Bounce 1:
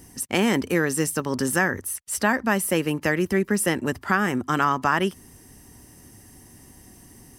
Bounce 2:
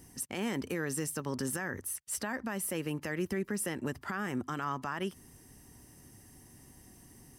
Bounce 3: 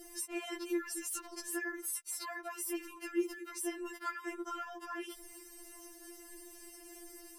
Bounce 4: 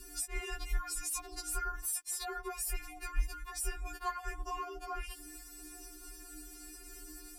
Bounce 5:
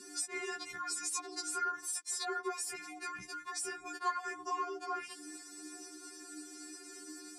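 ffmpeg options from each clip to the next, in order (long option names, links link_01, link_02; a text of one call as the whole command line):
ffmpeg -i in.wav -af "alimiter=limit=-17dB:level=0:latency=1:release=125,equalizer=frequency=140:width_type=o:width=0.22:gain=4,volume=-7.5dB" out.wav
ffmpeg -i in.wav -af "alimiter=level_in=11.5dB:limit=-24dB:level=0:latency=1:release=38,volume=-11.5dB,afftfilt=real='re*4*eq(mod(b,16),0)':imag='im*4*eq(mod(b,16),0)':win_size=2048:overlap=0.75,volume=8.5dB" out.wav
ffmpeg -i in.wav -af "afreqshift=-310,volume=2.5dB" out.wav
ffmpeg -i in.wav -filter_complex "[0:a]asplit=2[link_01][link_02];[link_02]asoftclip=type=tanh:threshold=-29.5dB,volume=-3.5dB[link_03];[link_01][link_03]amix=inputs=2:normalize=0,highpass=frequency=160:width=0.5412,highpass=frequency=160:width=1.3066,equalizer=frequency=190:width_type=q:width=4:gain=9,equalizer=frequency=660:width_type=q:width=4:gain=-6,equalizer=frequency=2800:width_type=q:width=4:gain=-9,lowpass=frequency=8400:width=0.5412,lowpass=frequency=8400:width=1.3066" out.wav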